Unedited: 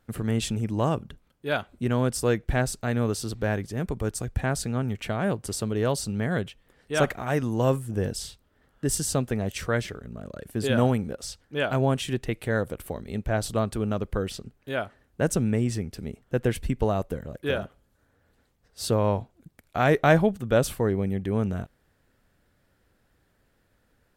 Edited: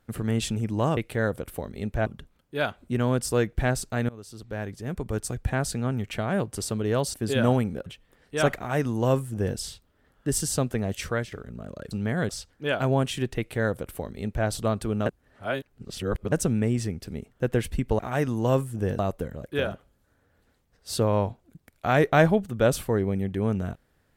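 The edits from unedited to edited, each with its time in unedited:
3–4.15 fade in linear, from -23 dB
6.05–6.43 swap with 10.48–11.2
7.14–8.14 copy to 16.9
9.58–9.89 fade out equal-power, to -11.5 dB
12.29–13.38 copy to 0.97
13.97–15.23 reverse

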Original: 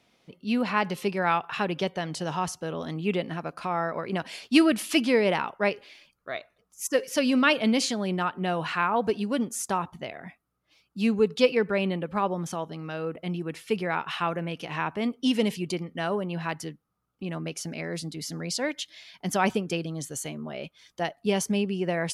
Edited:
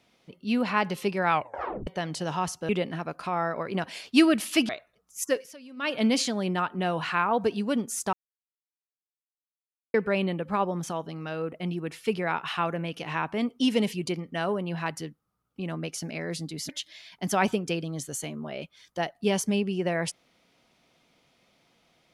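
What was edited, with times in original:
1.32 tape stop 0.55 s
2.69–3.07 cut
5.07–6.32 cut
6.9–7.67 dip -23 dB, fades 0.28 s
9.76–11.57 mute
18.32–18.71 cut

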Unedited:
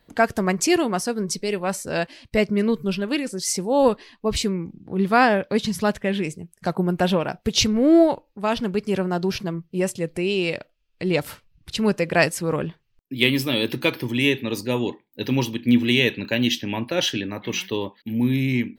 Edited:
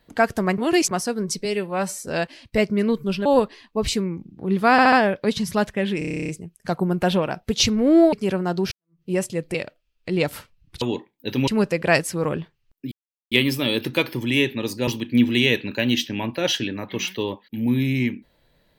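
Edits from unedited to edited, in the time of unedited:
0.58–0.91 reverse
1.45–1.86 stretch 1.5×
3.05–3.74 cut
5.2 stutter 0.07 s, 4 plays
6.26 stutter 0.03 s, 11 plays
8.1–8.78 cut
9.37–9.68 fade in exponential
10.2–10.48 cut
13.19 insert silence 0.40 s
14.75–15.41 move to 11.75

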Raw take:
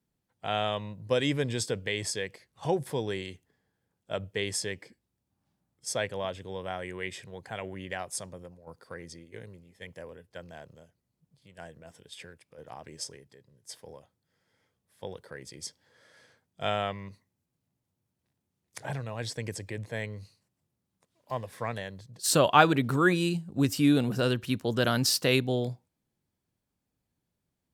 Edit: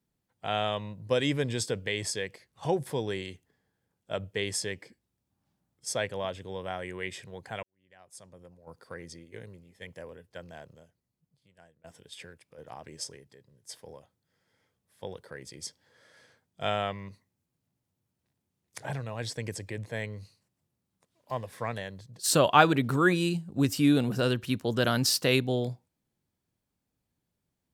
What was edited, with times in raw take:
7.63–8.78 fade in quadratic
10.6–11.84 fade out, to -23 dB

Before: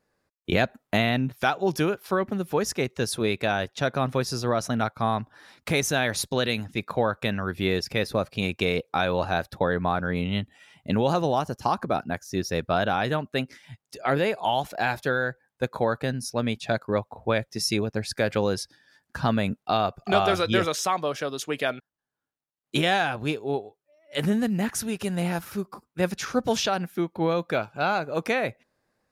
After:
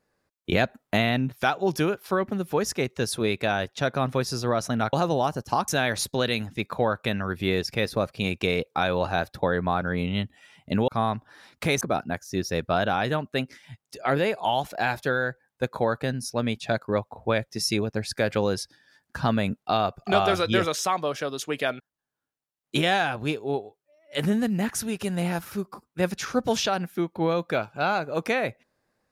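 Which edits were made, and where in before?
4.93–5.86 swap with 11.06–11.81

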